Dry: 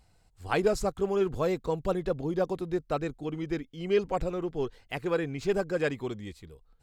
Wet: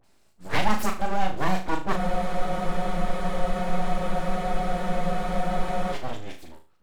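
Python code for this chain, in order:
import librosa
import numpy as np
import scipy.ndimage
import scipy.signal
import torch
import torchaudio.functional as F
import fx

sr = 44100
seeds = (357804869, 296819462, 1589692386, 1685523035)

y = scipy.signal.sosfilt(scipy.signal.butter(2, 80.0, 'highpass', fs=sr, output='sos'), x)
y = fx.dispersion(y, sr, late='highs', ms=40.0, hz=1300.0)
y = np.abs(y)
y = fx.room_flutter(y, sr, wall_m=6.4, rt60_s=0.35)
y = fx.spec_freeze(y, sr, seeds[0], at_s=2.0, hold_s=3.93)
y = y * librosa.db_to_amplitude(5.0)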